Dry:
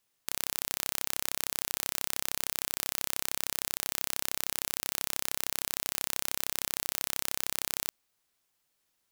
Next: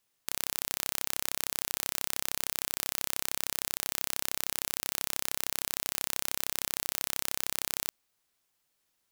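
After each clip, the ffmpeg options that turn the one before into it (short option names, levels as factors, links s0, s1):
-af anull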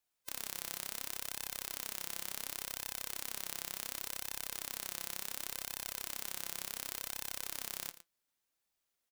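-af "afftfilt=real='real(if(lt(b,1008),b+24*(1-2*mod(floor(b/24),2)),b),0)':imag='imag(if(lt(b,1008),b+24*(1-2*mod(floor(b/24),2)),b),0)':win_size=2048:overlap=0.75,flanger=delay=1.1:depth=4.8:regen=72:speed=0.69:shape=sinusoidal,aecho=1:1:113:0.188,volume=0.668"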